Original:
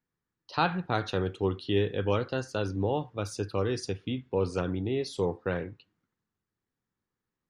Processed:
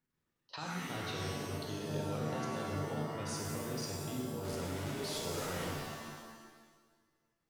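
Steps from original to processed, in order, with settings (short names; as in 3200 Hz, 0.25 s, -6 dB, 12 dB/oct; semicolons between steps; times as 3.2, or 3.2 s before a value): 4.43–5.66 delta modulation 64 kbps, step -29 dBFS; level quantiser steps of 22 dB; shimmer reverb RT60 1.4 s, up +7 st, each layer -2 dB, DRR -1 dB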